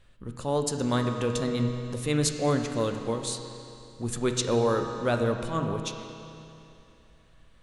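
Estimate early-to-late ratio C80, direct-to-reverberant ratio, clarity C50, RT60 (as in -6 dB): 6.0 dB, 4.0 dB, 5.5 dB, 2.8 s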